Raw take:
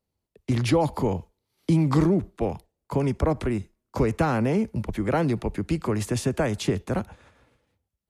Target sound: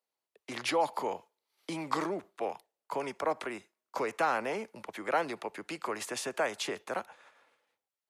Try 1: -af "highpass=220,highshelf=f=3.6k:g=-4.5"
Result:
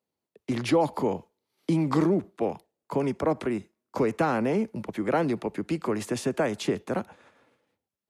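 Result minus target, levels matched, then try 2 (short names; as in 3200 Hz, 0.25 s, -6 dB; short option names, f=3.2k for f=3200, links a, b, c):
250 Hz band +7.5 dB
-af "highpass=710,highshelf=f=3.6k:g=-4.5"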